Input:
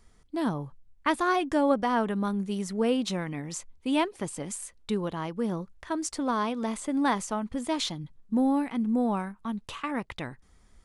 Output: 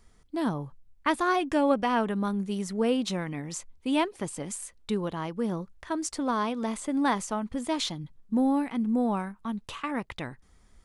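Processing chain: 1.51–2.01 s: peaking EQ 2.6 kHz +9.5 dB 0.36 oct

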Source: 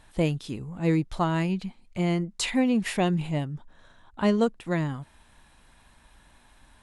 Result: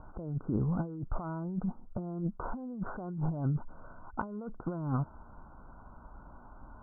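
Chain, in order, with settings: Chebyshev low-pass 1.5 kHz, order 10; compressor with a negative ratio -35 dBFS, ratio -1

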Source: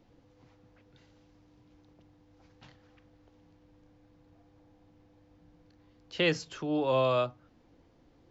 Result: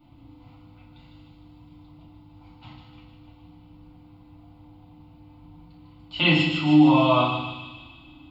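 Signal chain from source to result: static phaser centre 1.7 kHz, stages 6; feedback echo behind a high-pass 151 ms, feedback 62%, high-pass 2.7 kHz, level -4 dB; FDN reverb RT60 0.97 s, low-frequency decay 1.45×, high-frequency decay 0.6×, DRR -8 dB; trim +3.5 dB

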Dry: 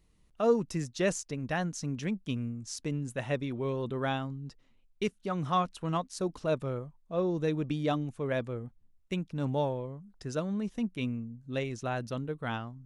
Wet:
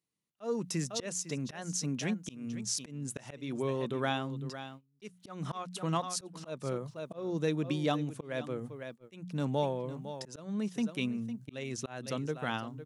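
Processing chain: high-pass 120 Hz 24 dB/octave; treble shelf 3.4 kHz +7.5 dB; hum notches 60/120/180 Hz; on a send: delay 505 ms -15 dB; on the sum: gate -49 dBFS, range -21 dB; in parallel at +0.5 dB: compression, threshold -36 dBFS, peak gain reduction 15 dB; on the sum: slow attack 248 ms; trim -3.5 dB

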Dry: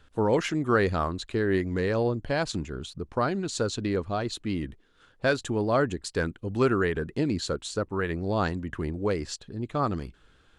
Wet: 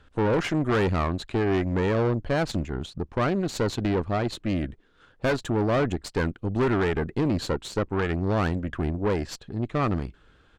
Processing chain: resampled via 22.05 kHz; valve stage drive 27 dB, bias 0.75; treble shelf 4.2 kHz -9.5 dB; trim +8 dB

